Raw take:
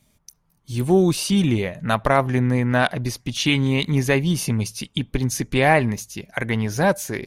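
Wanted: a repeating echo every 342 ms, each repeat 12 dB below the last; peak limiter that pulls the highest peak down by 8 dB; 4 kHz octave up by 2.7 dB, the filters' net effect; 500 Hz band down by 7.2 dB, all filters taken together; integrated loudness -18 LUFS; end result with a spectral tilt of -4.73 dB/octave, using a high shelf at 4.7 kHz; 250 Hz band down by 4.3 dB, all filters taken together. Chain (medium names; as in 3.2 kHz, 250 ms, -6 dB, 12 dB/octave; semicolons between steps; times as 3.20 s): peaking EQ 250 Hz -3.5 dB; peaking EQ 500 Hz -9 dB; peaking EQ 4 kHz +6.5 dB; treble shelf 4.7 kHz -6 dB; peak limiter -12 dBFS; feedback delay 342 ms, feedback 25%, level -12 dB; trim +6.5 dB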